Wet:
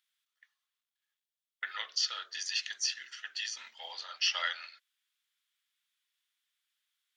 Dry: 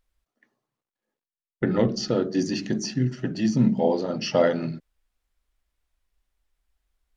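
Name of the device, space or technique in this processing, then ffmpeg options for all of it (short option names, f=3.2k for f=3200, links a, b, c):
headphones lying on a table: -af "highpass=f=1.4k:w=0.5412,highpass=f=1.4k:w=1.3066,equalizer=f=3.4k:t=o:w=0.41:g=8.5"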